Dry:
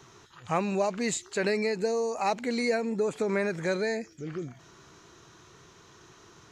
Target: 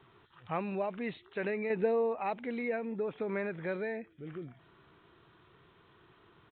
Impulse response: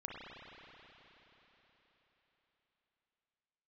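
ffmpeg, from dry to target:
-filter_complex "[0:a]asettb=1/sr,asplit=3[a][b][c];[a]atrim=end=1.704[d];[b]atrim=start=1.7:end=2.15,asetpts=PTS-STARTPTS,afade=t=in:d=0.004:c=qsin,afade=t=out:st=0.446:d=0.004:c=qsin,acontrast=57[e];[c]atrim=start=2.146[f];[d][e]acrossfade=d=0.004:c1=hsin:c2=qsin[g];[g][f]acrossfade=d=0.004:c1=qsin:c2=hsin,aresample=8000,aresample=44100,volume=-7dB"

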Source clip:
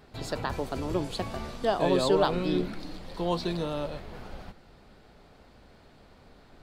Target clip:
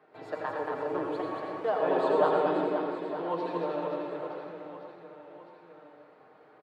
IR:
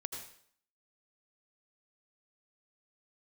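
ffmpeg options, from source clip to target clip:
-filter_complex "[0:a]highpass=f=100:w=0.5412,highpass=f=100:w=1.3066,acrossover=split=320 2200:gain=0.1 1 0.0631[a][b][c];[a][b][c]amix=inputs=3:normalize=0,aecho=1:1:6.5:0.51,aecho=1:1:230|529|917.7|1423|2080:0.631|0.398|0.251|0.158|0.1[d];[1:a]atrim=start_sample=2205[e];[d][e]afir=irnorm=-1:irlink=0"

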